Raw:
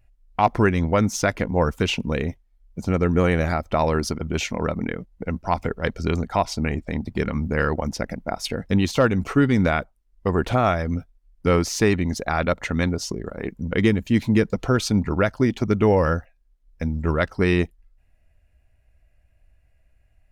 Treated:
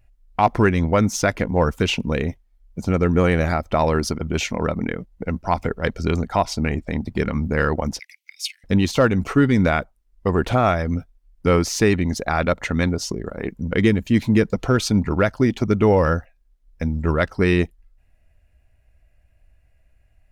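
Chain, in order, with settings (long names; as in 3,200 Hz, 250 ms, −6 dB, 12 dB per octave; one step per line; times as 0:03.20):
0:07.99–0:08.64: Butterworth high-pass 2,100 Hz 72 dB per octave
in parallel at −11.5 dB: hard clipping −13.5 dBFS, distortion −15 dB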